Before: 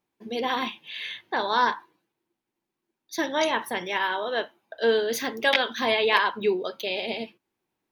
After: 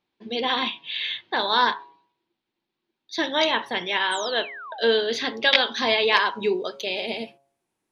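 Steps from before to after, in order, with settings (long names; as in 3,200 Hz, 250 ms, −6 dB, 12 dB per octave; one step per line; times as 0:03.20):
low-pass filter sweep 3,900 Hz → 9,900 Hz, 0:05.22–0:07.29
hum removal 138.2 Hz, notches 8
sound drawn into the spectrogram fall, 0:04.11–0:04.89, 510–9,100 Hz −39 dBFS
level +1 dB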